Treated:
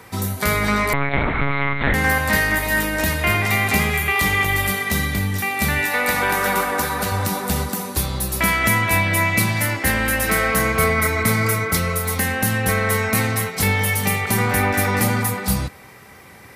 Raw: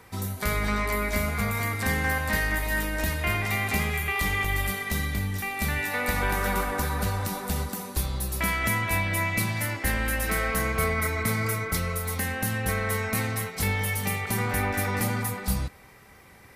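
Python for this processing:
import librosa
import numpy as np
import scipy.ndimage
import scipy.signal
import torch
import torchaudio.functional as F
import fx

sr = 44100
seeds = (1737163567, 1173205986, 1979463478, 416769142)

y = scipy.signal.sosfilt(scipy.signal.butter(2, 82.0, 'highpass', fs=sr, output='sos'), x)
y = fx.lpc_monotone(y, sr, seeds[0], pitch_hz=140.0, order=8, at=(0.93, 1.94))
y = fx.low_shelf(y, sr, hz=180.0, db=-10.5, at=(5.86, 7.12))
y = y * 10.0 ** (8.5 / 20.0)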